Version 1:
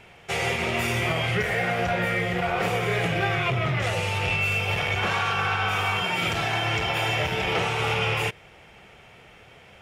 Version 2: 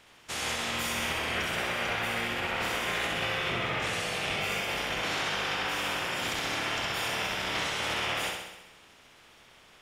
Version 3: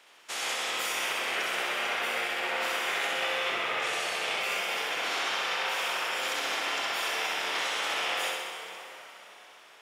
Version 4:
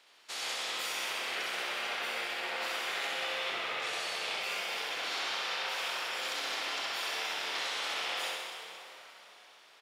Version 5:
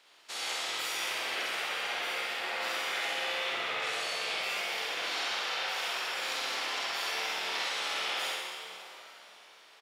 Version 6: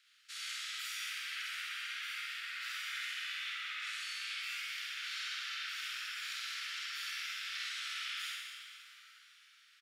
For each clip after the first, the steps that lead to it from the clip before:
spectral peaks clipped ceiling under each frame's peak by 19 dB; on a send: flutter echo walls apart 11.1 m, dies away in 0.96 s; on the sum: trim -8 dB
high-pass 450 Hz 12 dB/octave; plate-style reverb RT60 4.5 s, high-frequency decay 0.75×, DRR 5.5 dB
peaking EQ 4.3 kHz +7.5 dB 0.52 oct; frequency-shifting echo 93 ms, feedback 58%, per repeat +120 Hz, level -11 dB; trim -6.5 dB
doubling 49 ms -3.5 dB
steep high-pass 1.3 kHz 72 dB/octave; trim -6.5 dB

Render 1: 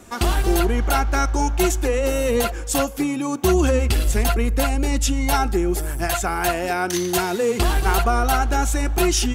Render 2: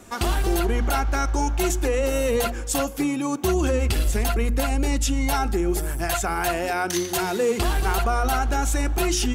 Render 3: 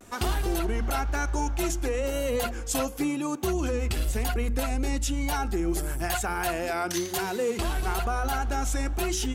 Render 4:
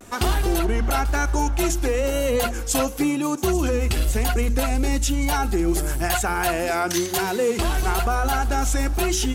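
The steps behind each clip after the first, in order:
de-hum 59.74 Hz, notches 6; peak limiter -12.5 dBFS, peak gain reduction 4 dB; trim -1 dB
gain riding 0.5 s; vibrato 1 Hz 72 cents; trim -5 dB
feedback echo behind a high-pass 838 ms, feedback 72%, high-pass 4.8 kHz, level -13 dB; trim +6 dB

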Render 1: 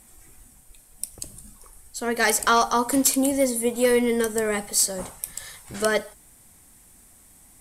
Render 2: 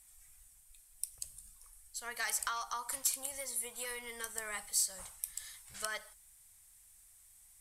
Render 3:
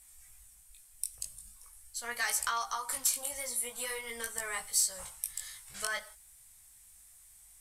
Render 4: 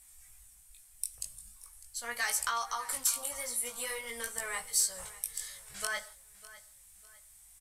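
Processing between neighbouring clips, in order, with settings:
dynamic bell 1.1 kHz, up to +7 dB, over -37 dBFS, Q 1.2; compression 10:1, threshold -19 dBFS, peak gain reduction 10 dB; amplifier tone stack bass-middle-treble 10-0-10; trim -7.5 dB
chorus 0.44 Hz, delay 16.5 ms, depth 4.3 ms; trim +7 dB
feedback delay 602 ms, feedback 35%, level -18 dB

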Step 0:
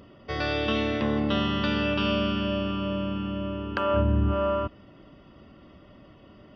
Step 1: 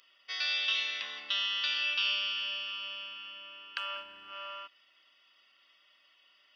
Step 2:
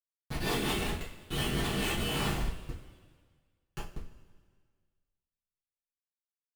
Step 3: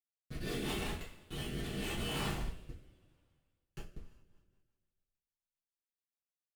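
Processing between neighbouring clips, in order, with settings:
Chebyshev high-pass 2.8 kHz, order 2; dynamic bell 5.2 kHz, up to +4 dB, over -49 dBFS, Q 0.78; trim +1.5 dB
Schmitt trigger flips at -28.5 dBFS; rotary cabinet horn 5.5 Hz, later 0.85 Hz, at 1.41 s; two-slope reverb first 0.3 s, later 1.7 s, from -18 dB, DRR -8 dB
rotary cabinet horn 0.8 Hz, later 7 Hz, at 3.75 s; trim -5 dB

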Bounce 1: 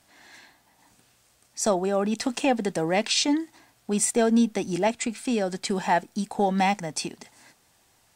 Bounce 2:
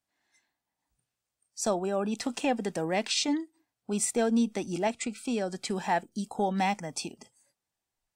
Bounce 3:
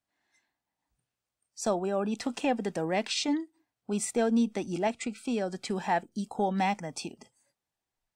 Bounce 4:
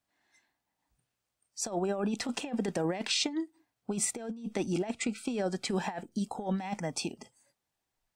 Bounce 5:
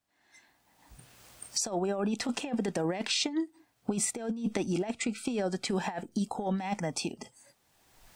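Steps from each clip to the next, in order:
spectral noise reduction 20 dB; trim -5 dB
treble shelf 5.2 kHz -6.5 dB
compressor with a negative ratio -31 dBFS, ratio -0.5
recorder AGC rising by 24 dB/s

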